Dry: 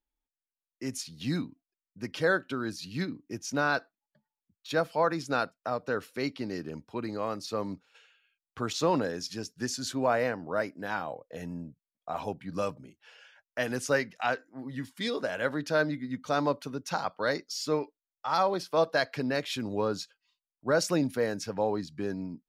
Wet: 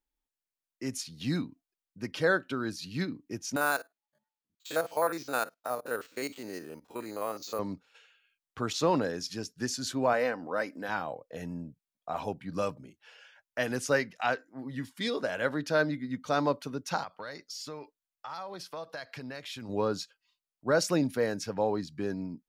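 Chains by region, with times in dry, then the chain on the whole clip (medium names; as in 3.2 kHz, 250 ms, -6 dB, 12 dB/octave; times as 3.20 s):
3.56–7.59 s: spectrogram pixelated in time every 50 ms + tone controls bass -13 dB, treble +3 dB + careless resampling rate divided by 4×, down filtered, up hold
10.13–10.89 s: bass shelf 200 Hz -11 dB + comb 3.9 ms, depth 37% + upward compressor, threshold -34 dBFS
17.03–19.69 s: peaking EQ 330 Hz -6 dB 1.8 oct + compression 4:1, threshold -38 dBFS
whole clip: none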